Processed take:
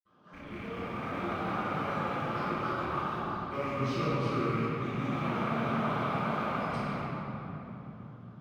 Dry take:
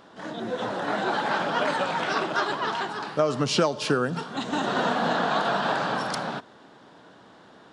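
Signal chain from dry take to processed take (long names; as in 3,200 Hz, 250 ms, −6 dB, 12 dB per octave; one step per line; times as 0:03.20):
loose part that buzzes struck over −37 dBFS, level −17 dBFS
in parallel at −9 dB: comparator with hysteresis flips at −26 dBFS
on the sum: parametric band 1,300 Hz +11.5 dB 0.26 octaves
convolution reverb RT60 3.5 s, pre-delay 47 ms
wrong playback speed 48 kHz file played as 44.1 kHz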